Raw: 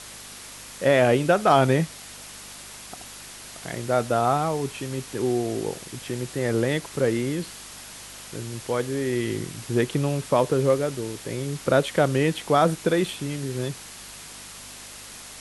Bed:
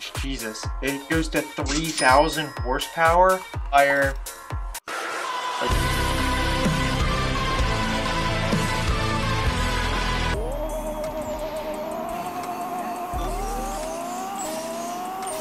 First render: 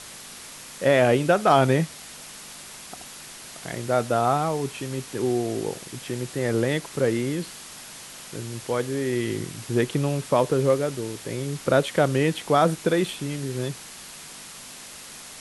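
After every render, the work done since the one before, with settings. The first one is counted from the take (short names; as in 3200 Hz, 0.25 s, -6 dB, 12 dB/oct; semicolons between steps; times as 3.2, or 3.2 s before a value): de-hum 50 Hz, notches 2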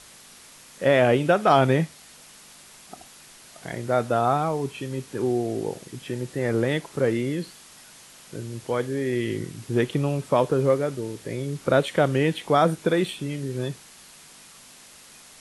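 noise print and reduce 7 dB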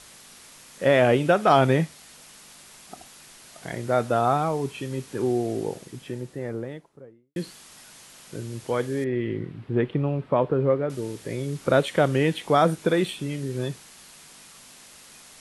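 5.49–7.36 studio fade out; 9.04–10.9 air absorption 450 m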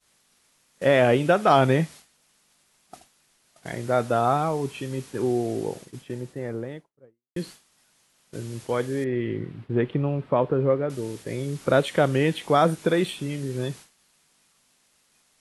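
expander -37 dBFS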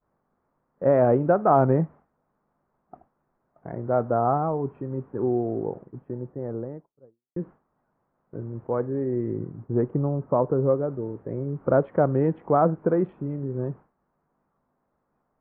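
Wiener smoothing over 9 samples; LPF 1200 Hz 24 dB/oct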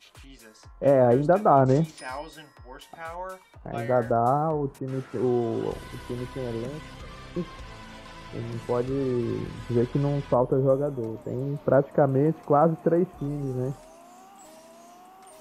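add bed -19.5 dB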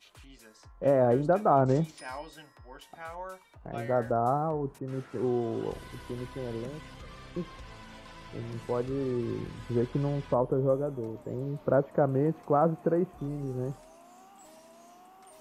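gain -4.5 dB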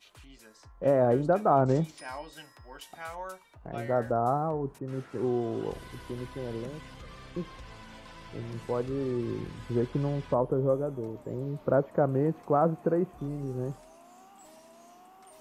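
2.36–3.32 high shelf 2200 Hz +7.5 dB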